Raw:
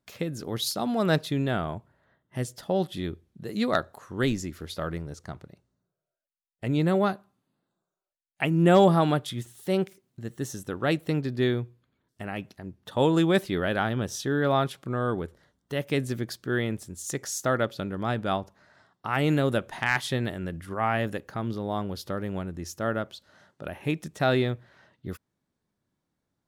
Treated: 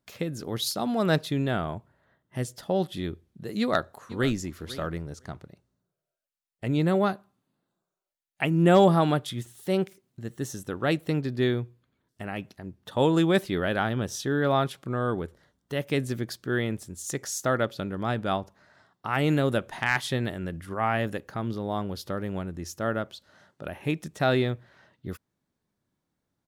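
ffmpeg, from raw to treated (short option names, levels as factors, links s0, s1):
-filter_complex "[0:a]asplit=2[s0][s1];[s1]afade=t=in:st=3.59:d=0.01,afade=t=out:st=4.36:d=0.01,aecho=0:1:500|1000:0.141254|0.0141254[s2];[s0][s2]amix=inputs=2:normalize=0"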